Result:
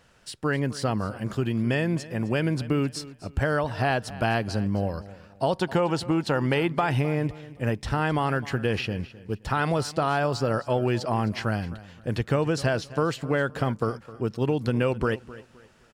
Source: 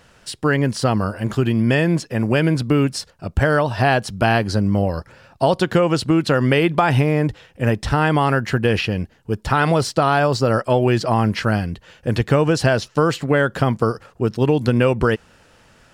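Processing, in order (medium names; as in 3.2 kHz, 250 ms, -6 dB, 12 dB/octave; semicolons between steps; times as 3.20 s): 5.54–6.68 s: peaking EQ 870 Hz +10.5 dB 0.29 oct; on a send: feedback delay 260 ms, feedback 30%, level -17.5 dB; on the sum: trim -8 dB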